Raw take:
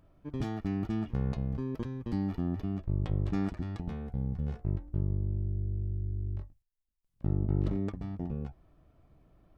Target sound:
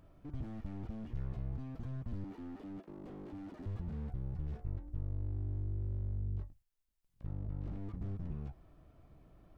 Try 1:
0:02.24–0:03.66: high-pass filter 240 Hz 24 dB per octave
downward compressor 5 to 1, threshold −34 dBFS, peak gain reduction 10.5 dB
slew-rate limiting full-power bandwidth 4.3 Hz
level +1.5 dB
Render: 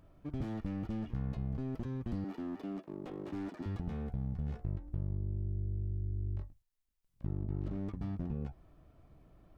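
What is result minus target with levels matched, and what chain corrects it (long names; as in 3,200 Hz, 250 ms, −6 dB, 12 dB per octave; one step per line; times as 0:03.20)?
slew-rate limiting: distortion −12 dB
0:02.24–0:03.66: high-pass filter 240 Hz 24 dB per octave
downward compressor 5 to 1, threshold −34 dBFS, peak gain reduction 10.5 dB
slew-rate limiting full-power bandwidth 1.5 Hz
level +1.5 dB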